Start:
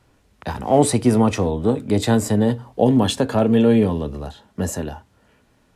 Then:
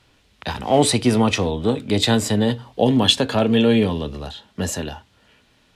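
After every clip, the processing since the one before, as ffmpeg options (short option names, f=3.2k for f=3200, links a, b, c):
-af "equalizer=f=3.4k:t=o:w=1.6:g=12,volume=-1.5dB"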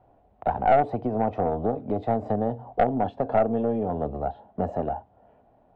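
-af "acompressor=threshold=-22dB:ratio=6,lowpass=f=720:t=q:w=7.2,aeval=exprs='(tanh(2.82*val(0)+0.4)-tanh(0.4))/2.82':c=same,volume=-2dB"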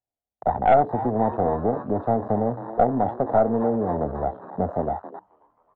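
-filter_complex "[0:a]asplit=7[a][b][c][d][e][f][g];[b]adelay=269,afreqshift=110,volume=-14dB[h];[c]adelay=538,afreqshift=220,volume=-19.2dB[i];[d]adelay=807,afreqshift=330,volume=-24.4dB[j];[e]adelay=1076,afreqshift=440,volume=-29.6dB[k];[f]adelay=1345,afreqshift=550,volume=-34.8dB[l];[g]adelay=1614,afreqshift=660,volume=-40dB[m];[a][h][i][j][k][l][m]amix=inputs=7:normalize=0,agate=range=-23dB:threshold=-54dB:ratio=16:detection=peak,afwtdn=0.0224,volume=2.5dB"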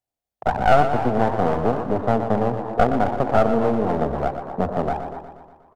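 -filter_complex "[0:a]aeval=exprs='clip(val(0),-1,0.0447)':c=same,asplit=2[a][b];[b]aecho=0:1:120|240|360|480|600|720|840:0.335|0.198|0.117|0.0688|0.0406|0.0239|0.0141[c];[a][c]amix=inputs=2:normalize=0,volume=3dB"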